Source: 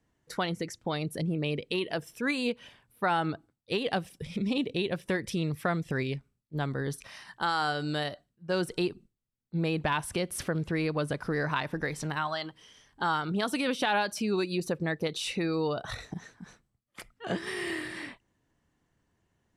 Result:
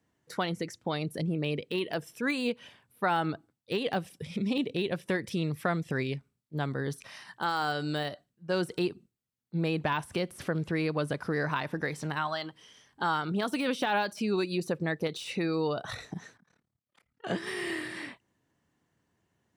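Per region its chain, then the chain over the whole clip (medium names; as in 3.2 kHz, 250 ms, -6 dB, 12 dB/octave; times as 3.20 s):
16.37–17.24 s: low-pass 4 kHz 6 dB/octave + compression 8:1, threshold -59 dBFS + AM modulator 36 Hz, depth 85%
whole clip: de-esser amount 95%; high-pass 94 Hz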